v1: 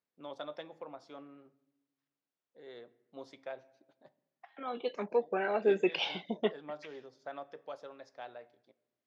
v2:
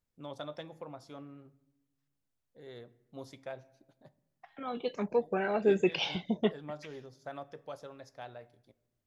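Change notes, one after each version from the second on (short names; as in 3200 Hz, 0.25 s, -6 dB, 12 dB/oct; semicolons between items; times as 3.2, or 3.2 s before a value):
master: remove BPF 300–4500 Hz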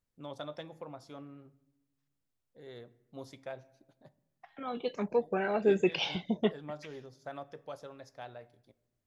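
none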